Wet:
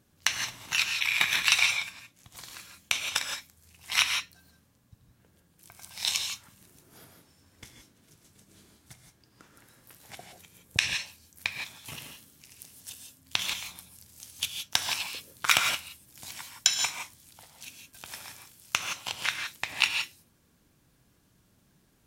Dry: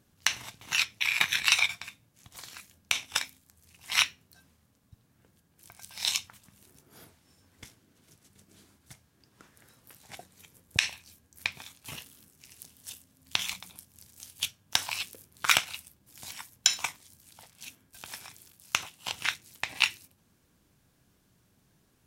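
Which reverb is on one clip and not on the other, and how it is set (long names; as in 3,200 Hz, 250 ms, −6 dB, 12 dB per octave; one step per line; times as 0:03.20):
reverb whose tail is shaped and stops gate 190 ms rising, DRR 4 dB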